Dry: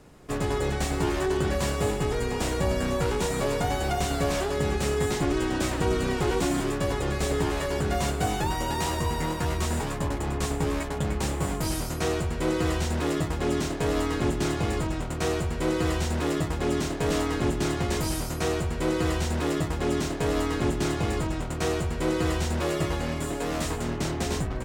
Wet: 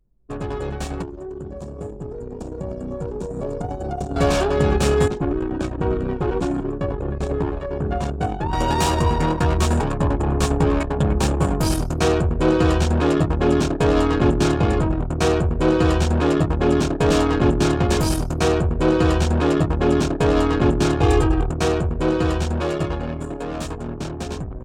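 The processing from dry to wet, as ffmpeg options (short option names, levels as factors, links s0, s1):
-filter_complex "[0:a]asettb=1/sr,asplit=3[s0][s1][s2];[s0]atrim=end=1.024[s3];[s1]atrim=start=1.02:end=4.16,asetpts=PTS-STARTPTS,afade=t=in:d=0.004:c=qsin,afade=t=out:st=3.136:d=0.004:c=qsin,acrossover=split=110|760|4200[s4][s5][s6][s7];[s4]acompressor=threshold=0.00891:ratio=3[s8];[s5]acompressor=threshold=0.0251:ratio=3[s9];[s6]acompressor=threshold=0.00398:ratio=3[s10];[s7]acompressor=threshold=0.01:ratio=3[s11];[s8][s9][s10][s11]amix=inputs=4:normalize=0[s12];[s2]atrim=start=4.156[s13];[s3][s12]acrossfade=d=0.004:c1=hsin:c2=qsin[s14];[s14][s13]acrossfade=d=0.004:c1=qsin:c2=hsin,asettb=1/sr,asplit=3[s15][s16][s17];[s15]atrim=end=21.014[s18];[s16]atrim=start=21.01:end=21.51,asetpts=PTS-STARTPTS,afade=t=in:d=0.004:c=qsin,afade=t=out:st=0.496:d=0.004:c=qsin,aecho=1:1:2.5:0.94,atrim=end_sample=22050[s19];[s17]atrim=start=21.506[s20];[s18][s19]acrossfade=d=0.004:c1=hsin:c2=qsin[s21];[s21][s20]acrossfade=d=0.004:c1=qsin:c2=hsin,asplit=3[s22][s23][s24];[s22]atrim=end=5.082[s25];[s23]atrim=start=5.078:end=8.532,asetpts=PTS-STARTPTS,volume=0.562[s26];[s24]atrim=start=8.528[s27];[s25][s26]acrossfade=d=0.004:c1=hsin:c2=hsin[s28];[s28][s27]acrossfade=d=0.004:c1=hsin:c2=hsin,anlmdn=39.8,bandreject=f=2000:w=6.3,dynaudnorm=f=690:g=9:m=2.99"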